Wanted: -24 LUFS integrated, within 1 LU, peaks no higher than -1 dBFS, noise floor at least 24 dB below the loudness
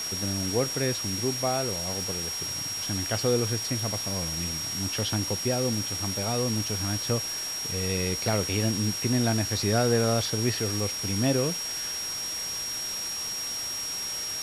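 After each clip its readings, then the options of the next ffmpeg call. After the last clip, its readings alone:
steady tone 5.6 kHz; tone level -31 dBFS; noise floor -33 dBFS; noise floor target -51 dBFS; loudness -27.0 LUFS; peak level -11.0 dBFS; loudness target -24.0 LUFS
-> -af "bandreject=f=5600:w=30"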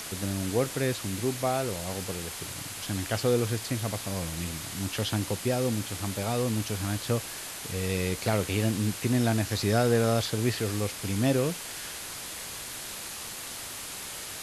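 steady tone not found; noise floor -39 dBFS; noise floor target -54 dBFS
-> -af "afftdn=nr=15:nf=-39"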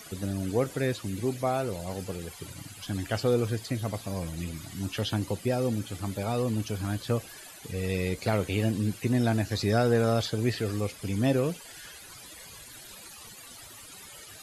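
noise floor -47 dBFS; noise floor target -54 dBFS
-> -af "afftdn=nr=7:nf=-47"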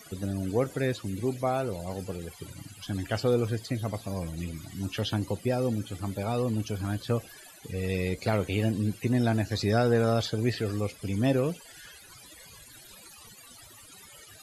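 noise floor -51 dBFS; noise floor target -54 dBFS
-> -af "afftdn=nr=6:nf=-51"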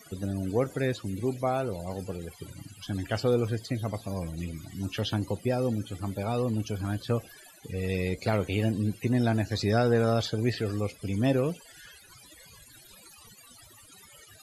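noise floor -54 dBFS; loudness -29.5 LUFS; peak level -13.0 dBFS; loudness target -24.0 LUFS
-> -af "volume=1.88"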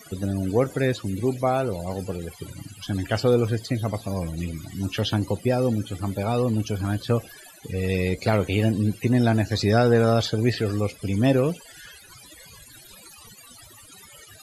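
loudness -24.0 LUFS; peak level -7.5 dBFS; noise floor -48 dBFS

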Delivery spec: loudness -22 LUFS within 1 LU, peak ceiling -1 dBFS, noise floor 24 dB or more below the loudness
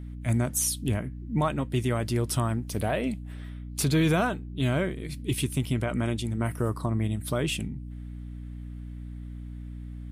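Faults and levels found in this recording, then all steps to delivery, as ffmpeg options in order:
hum 60 Hz; highest harmonic 300 Hz; hum level -37 dBFS; loudness -28.5 LUFS; peak level -14.5 dBFS; loudness target -22.0 LUFS
-> -af "bandreject=f=60:t=h:w=6,bandreject=f=120:t=h:w=6,bandreject=f=180:t=h:w=6,bandreject=f=240:t=h:w=6,bandreject=f=300:t=h:w=6"
-af "volume=2.11"

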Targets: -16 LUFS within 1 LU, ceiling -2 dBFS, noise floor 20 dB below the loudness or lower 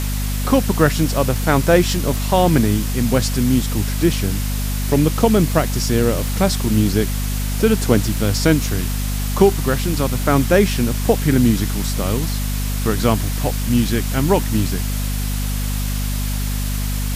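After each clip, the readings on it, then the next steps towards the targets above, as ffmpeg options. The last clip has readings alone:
hum 50 Hz; highest harmonic 250 Hz; hum level -19 dBFS; noise floor -21 dBFS; noise floor target -39 dBFS; loudness -18.5 LUFS; peak level -1.5 dBFS; loudness target -16.0 LUFS
-> -af "bandreject=f=50:t=h:w=6,bandreject=f=100:t=h:w=6,bandreject=f=150:t=h:w=6,bandreject=f=200:t=h:w=6,bandreject=f=250:t=h:w=6"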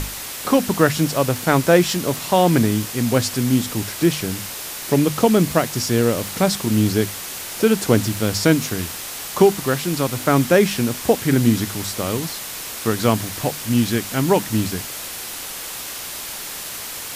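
hum not found; noise floor -31 dBFS; noise floor target -40 dBFS
-> -af "afftdn=nr=9:nf=-31"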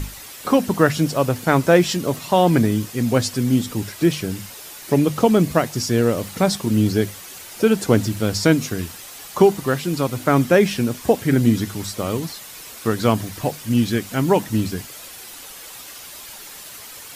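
noise floor -38 dBFS; noise floor target -40 dBFS
-> -af "afftdn=nr=6:nf=-38"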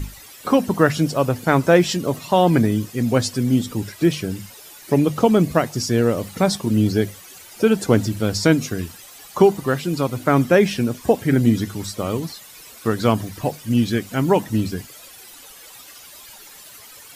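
noise floor -43 dBFS; loudness -19.5 LUFS; peak level -1.5 dBFS; loudness target -16.0 LUFS
-> -af "volume=1.5,alimiter=limit=0.794:level=0:latency=1"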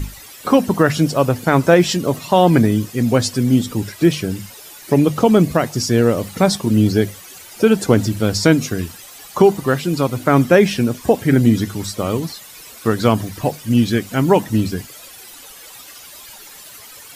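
loudness -16.5 LUFS; peak level -2.0 dBFS; noise floor -39 dBFS

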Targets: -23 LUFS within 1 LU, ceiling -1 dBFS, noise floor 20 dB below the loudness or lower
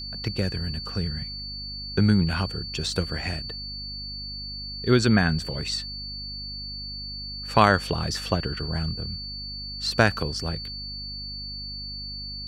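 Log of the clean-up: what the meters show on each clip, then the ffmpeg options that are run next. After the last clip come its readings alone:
hum 50 Hz; highest harmonic 250 Hz; hum level -38 dBFS; steady tone 4.5 kHz; tone level -34 dBFS; loudness -27.0 LUFS; peak level -3.0 dBFS; loudness target -23.0 LUFS
-> -af "bandreject=f=50:t=h:w=4,bandreject=f=100:t=h:w=4,bandreject=f=150:t=h:w=4,bandreject=f=200:t=h:w=4,bandreject=f=250:t=h:w=4"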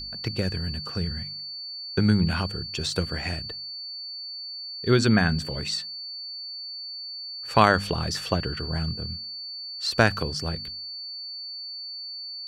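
hum not found; steady tone 4.5 kHz; tone level -34 dBFS
-> -af "bandreject=f=4500:w=30"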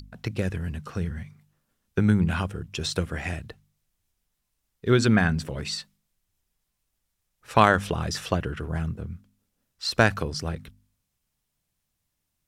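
steady tone not found; loudness -26.0 LUFS; peak level -3.0 dBFS; loudness target -23.0 LUFS
-> -af "volume=1.41,alimiter=limit=0.891:level=0:latency=1"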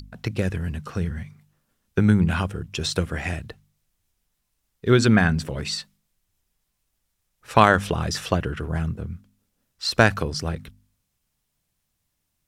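loudness -23.0 LUFS; peak level -1.0 dBFS; noise floor -76 dBFS

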